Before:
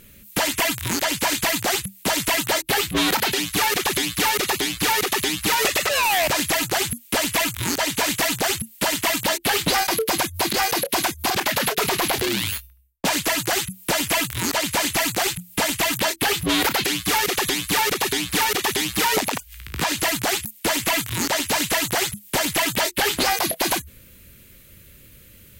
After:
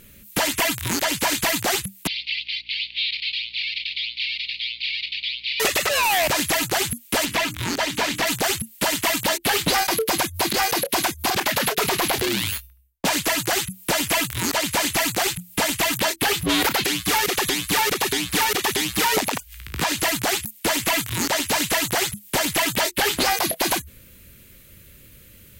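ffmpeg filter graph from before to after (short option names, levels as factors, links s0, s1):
-filter_complex "[0:a]asettb=1/sr,asplit=3[s0][s1][s2];[s0]atrim=end=2.074[s3];[s1]atrim=start=2.07:end=5.6,asetpts=PTS-STARTPTS,afade=t=in:d=0.004:c=qsin,afade=t=out:st=3.526:d=0.004:c=qsin,asuperpass=centerf=3200:order=12:qfactor=1.3,aecho=1:1:171|342|513|684:0.1|0.051|0.026|0.0133,atrim=end_sample=155673,aeval=exprs='val(0)+0.001*(sin(2*PI*60*n/s)+sin(2*PI*2*60*n/s)/2+sin(2*PI*3*60*n/s)/3+sin(2*PI*4*60*n/s)/4+sin(2*PI*5*60*n/s)/5)':c=same[s4];[s2]atrim=start=5.596[s5];[s3][s4]acrossfade=d=0.004:c1=hsin:c2=qsin[s6];[s6][s5]acrossfade=d=0.004:c1=qsin:c2=hsin,asettb=1/sr,asplit=3[s7][s8][s9];[s7]atrim=end=7.254[s10];[s8]atrim=start=7.25:end=8.27,asetpts=PTS-STARTPTS,afade=t=in:d=0.004:c=qsin,afade=t=out:st=1.016:d=0.004:c=qsin,acrossover=split=5800[s11][s12];[s12]acompressor=threshold=0.02:ratio=4:attack=1:release=60[s13];[s11][s13]amix=inputs=2:normalize=0,bandreject=f=50:t=h:w=6,bandreject=f=100:t=h:w=6,bandreject=f=150:t=h:w=6,bandreject=f=200:t=h:w=6,bandreject=f=250:t=h:w=6,bandreject=f=300:t=h:w=6,bandreject=f=350:t=h:w=6,bandreject=f=400:t=h:w=6[s14];[s9]atrim=start=8.266[s15];[s10][s14]acrossfade=d=0.004:c1=hsin:c2=qsin[s16];[s16][s15]acrossfade=d=0.004:c1=qsin:c2=hsin"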